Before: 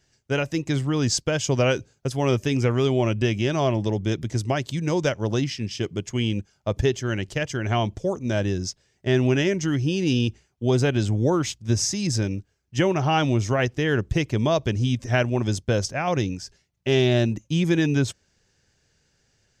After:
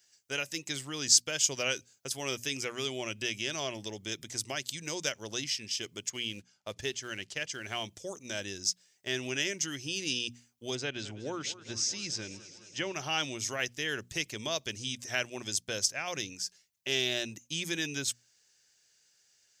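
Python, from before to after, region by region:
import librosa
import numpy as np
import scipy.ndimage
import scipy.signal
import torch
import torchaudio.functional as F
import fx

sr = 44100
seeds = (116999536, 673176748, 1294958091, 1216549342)

y = fx.chain(x, sr, fx.quant_float(bits=4),
    fx.air_absorb(metres=76.0), at=(6.1, 7.84))
y = fx.chain(y, sr, fx.air_absorb(metres=140.0),
    fx.echo_warbled(ms=209, feedback_pct=71, rate_hz=2.8, cents=92, wet_db=-16.5), at=(10.75, 12.94))
y = fx.tilt_eq(y, sr, slope=4.5)
y = fx.hum_notches(y, sr, base_hz=60, count=4)
y = fx.dynamic_eq(y, sr, hz=920.0, q=1.1, threshold_db=-40.0, ratio=4.0, max_db=-5)
y = y * 10.0 ** (-8.5 / 20.0)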